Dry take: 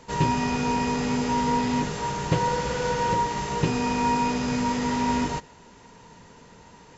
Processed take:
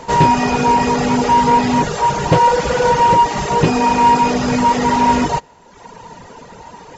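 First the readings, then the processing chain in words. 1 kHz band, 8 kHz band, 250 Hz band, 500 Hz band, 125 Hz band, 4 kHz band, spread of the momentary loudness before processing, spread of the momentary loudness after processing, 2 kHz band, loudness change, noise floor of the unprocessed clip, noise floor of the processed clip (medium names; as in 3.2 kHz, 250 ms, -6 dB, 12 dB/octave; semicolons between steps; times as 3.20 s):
+13.5 dB, no reading, +8.0 dB, +11.5 dB, +8.0 dB, +8.5 dB, 3 LU, 4 LU, +9.5 dB, +11.0 dB, -51 dBFS, -44 dBFS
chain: reverb removal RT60 1 s; peaking EQ 740 Hz +7.5 dB 1.5 oct; in parallel at +2 dB: saturation -21 dBFS, distortion -12 dB; on the sum: trim +4.5 dB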